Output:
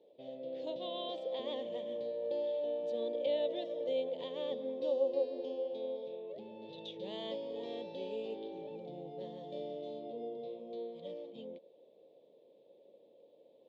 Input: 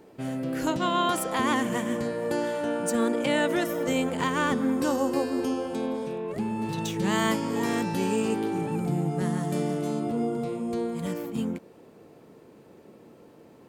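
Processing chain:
pair of resonant band-passes 1,400 Hz, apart 2.7 octaves
high-frequency loss of the air 210 metres

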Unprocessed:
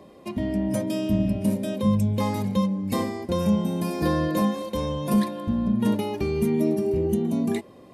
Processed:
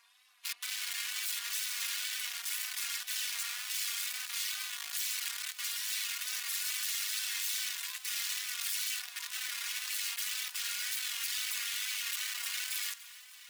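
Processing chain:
lower of the sound and its delayed copy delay 2.7 ms
wrap-around overflow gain 29 dB
Bessel high-pass filter 2,500 Hz, order 4
time stretch by overlap-add 1.7×, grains 20 ms
echo machine with several playback heads 292 ms, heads first and third, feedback 52%, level −19 dB
tape wow and flutter 67 cents
level +2 dB

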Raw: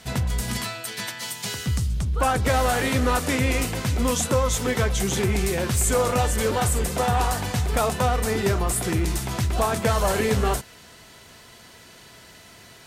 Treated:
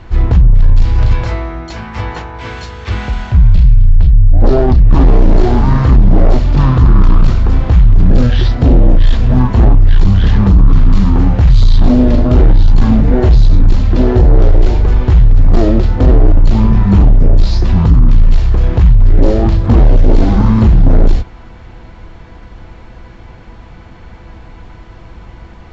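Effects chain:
RIAA equalisation playback
sine wavefolder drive 7 dB, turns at −0.5 dBFS
wrong playback speed 15 ips tape played at 7.5 ips
level −1 dB

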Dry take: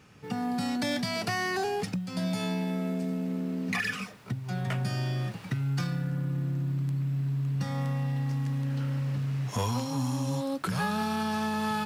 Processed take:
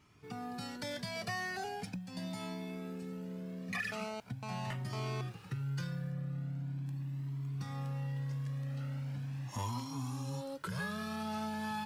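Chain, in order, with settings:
0:03.92–0:05.21: phone interference −33 dBFS
0:06.12–0:06.86: high-shelf EQ 8,900 Hz −8.5 dB
flanger whose copies keep moving one way rising 0.41 Hz
level −4.5 dB

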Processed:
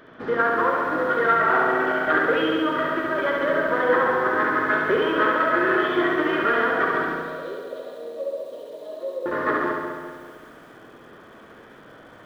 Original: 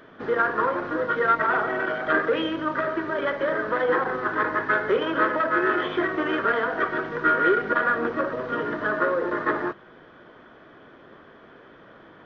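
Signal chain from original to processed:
0:07.14–0:09.26: pair of resonant band-passes 1,500 Hz, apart 2.8 octaves
flutter between parallel walls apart 11.8 metres, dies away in 1.3 s
feedback echo at a low word length 195 ms, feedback 55%, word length 8 bits, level −11.5 dB

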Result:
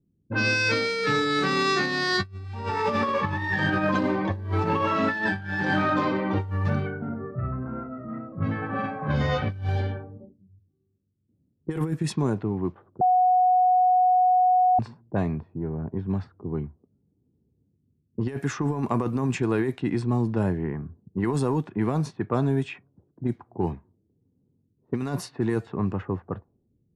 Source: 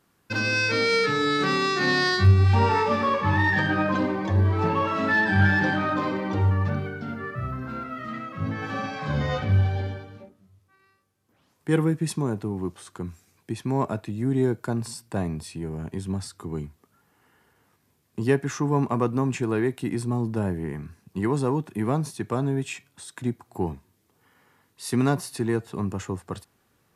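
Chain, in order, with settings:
low-pass that shuts in the quiet parts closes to 310 Hz, open at −22.5 dBFS
0:07.09–0:07.66: low-pass filter 1,300 Hz 6 dB per octave
low-pass that shuts in the quiet parts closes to 320 Hz, open at −19.5 dBFS
compressor whose output falls as the input rises −24 dBFS, ratio −0.5
0:13.01–0:14.79: beep over 734 Hz −16 dBFS

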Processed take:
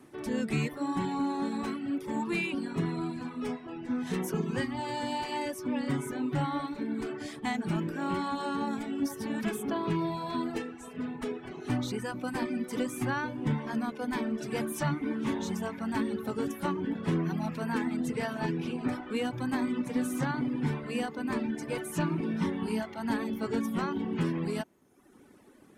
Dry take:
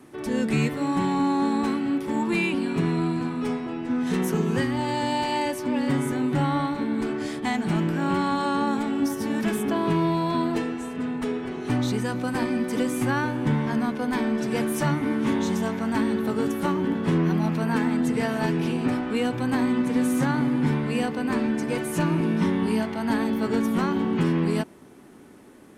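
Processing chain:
reverb reduction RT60 1 s
0:18.33–0:18.89: high-shelf EQ 8,900 Hz −10.5 dB
level −5 dB

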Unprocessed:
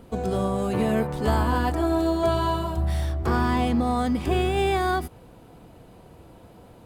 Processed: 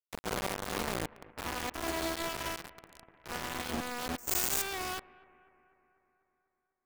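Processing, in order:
low-shelf EQ 150 Hz −10.5 dB
0:00.89: tape stop 0.49 s
brickwall limiter −19.5 dBFS, peak gain reduction 6.5 dB
bit reduction 4 bits
downward compressor 6 to 1, threshold −38 dBFS, peak gain reduction 17 dB
bucket-brigade delay 247 ms, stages 4,096, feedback 63%, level −21.5 dB
wave folding −32.5 dBFS
speech leveller 2 s
0:02.60–0:03.30: hard clipping −39.5 dBFS, distortion −30 dB
0:04.18–0:04.62: bad sample-rate conversion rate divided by 6×, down none, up zero stuff
level +6.5 dB

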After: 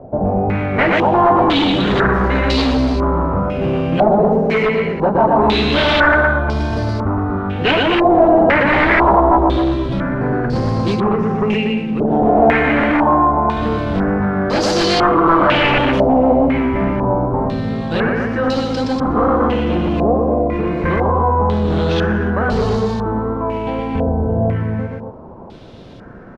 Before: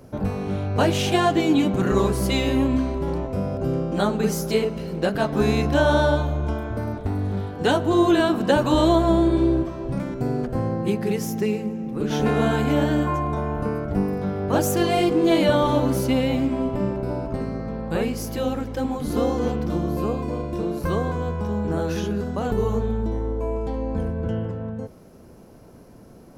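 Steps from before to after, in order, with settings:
variable-slope delta modulation 64 kbit/s
multi-tap delay 119/240 ms −3/−6.5 dB
sine wavefolder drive 11 dB, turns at −4 dBFS
tape wow and flutter 19 cents
low-pass on a step sequencer 2 Hz 710–4,700 Hz
level −8 dB

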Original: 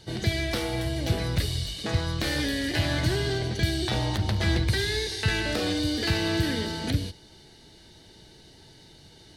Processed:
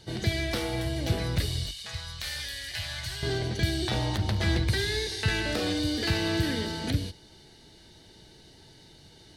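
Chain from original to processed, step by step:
0:01.71–0:03.23: guitar amp tone stack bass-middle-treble 10-0-10
level −1.5 dB

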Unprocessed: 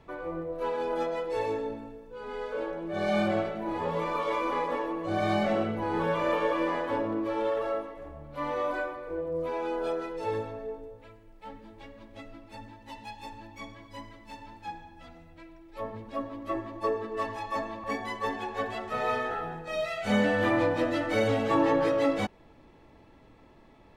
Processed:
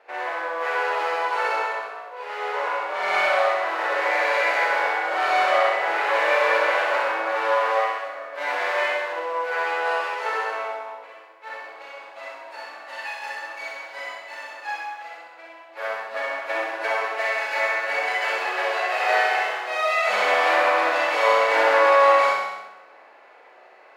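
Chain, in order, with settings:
lower of the sound and its delayed copy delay 0.42 ms
in parallel at −2.5 dB: downward compressor, threshold −40 dBFS, peak gain reduction 17.5 dB
on the sum: high-pass filter 640 Hz 24 dB per octave
high-shelf EQ 3,200 Hz −11 dB
flutter between parallel walls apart 11.1 metres, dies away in 0.75 s
four-comb reverb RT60 1 s, combs from 31 ms, DRR −3 dB
one half of a high-frequency compander decoder only
level +8 dB

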